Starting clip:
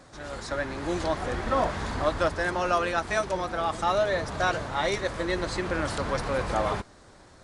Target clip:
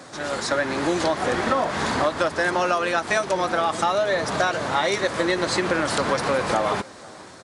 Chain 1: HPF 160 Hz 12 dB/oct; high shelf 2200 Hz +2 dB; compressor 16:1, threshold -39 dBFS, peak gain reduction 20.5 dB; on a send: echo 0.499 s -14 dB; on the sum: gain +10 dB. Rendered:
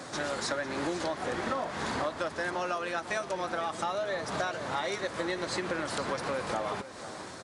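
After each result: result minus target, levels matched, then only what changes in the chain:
compressor: peak gain reduction +11 dB; echo-to-direct +10.5 dB
change: compressor 16:1, threshold -27.5 dBFS, peak gain reduction 10 dB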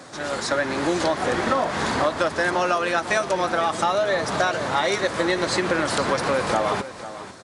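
echo-to-direct +10.5 dB
change: echo 0.499 s -24.5 dB

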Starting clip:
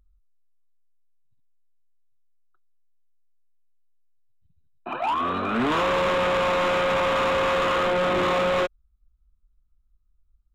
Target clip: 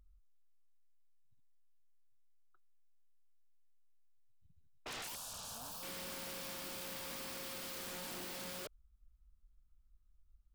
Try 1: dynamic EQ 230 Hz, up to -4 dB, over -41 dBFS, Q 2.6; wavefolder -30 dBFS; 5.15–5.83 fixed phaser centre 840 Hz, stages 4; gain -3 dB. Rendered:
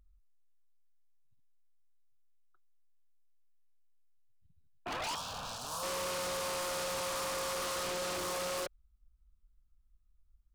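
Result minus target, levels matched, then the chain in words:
wavefolder: distortion -14 dB
dynamic EQ 230 Hz, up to -4 dB, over -41 dBFS, Q 2.6; wavefolder -37 dBFS; 5.15–5.83 fixed phaser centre 840 Hz, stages 4; gain -3 dB

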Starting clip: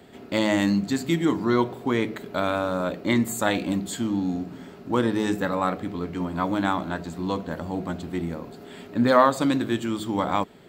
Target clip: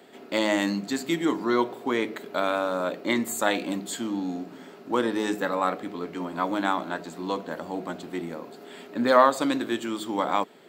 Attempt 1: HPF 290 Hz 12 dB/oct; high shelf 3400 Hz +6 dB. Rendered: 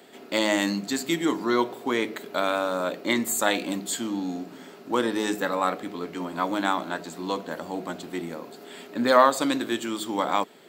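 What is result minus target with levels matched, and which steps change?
8000 Hz band +4.5 dB
remove: high shelf 3400 Hz +6 dB

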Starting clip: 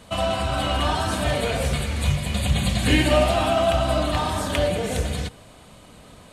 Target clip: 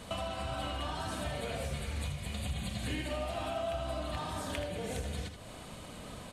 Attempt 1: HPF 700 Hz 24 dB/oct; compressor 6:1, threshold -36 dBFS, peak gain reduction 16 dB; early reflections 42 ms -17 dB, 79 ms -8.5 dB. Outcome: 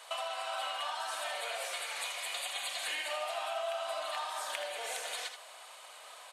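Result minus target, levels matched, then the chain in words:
500 Hz band -3.0 dB
compressor 6:1, threshold -36 dBFS, peak gain reduction 20.5 dB; early reflections 42 ms -17 dB, 79 ms -8.5 dB

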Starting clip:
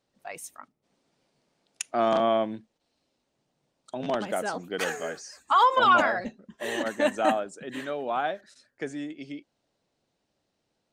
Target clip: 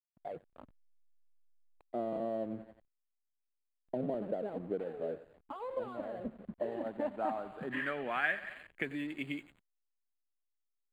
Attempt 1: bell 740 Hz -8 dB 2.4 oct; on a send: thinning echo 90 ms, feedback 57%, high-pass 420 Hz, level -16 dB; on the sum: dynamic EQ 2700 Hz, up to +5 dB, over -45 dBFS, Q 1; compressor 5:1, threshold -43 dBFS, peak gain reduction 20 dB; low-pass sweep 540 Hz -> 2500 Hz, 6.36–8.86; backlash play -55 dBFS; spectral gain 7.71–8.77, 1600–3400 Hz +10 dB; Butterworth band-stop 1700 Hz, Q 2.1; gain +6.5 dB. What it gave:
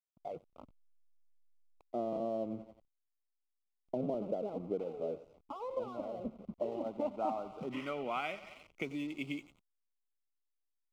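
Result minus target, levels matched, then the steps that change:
2000 Hz band -8.5 dB
change: Butterworth band-stop 5700 Hz, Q 2.1

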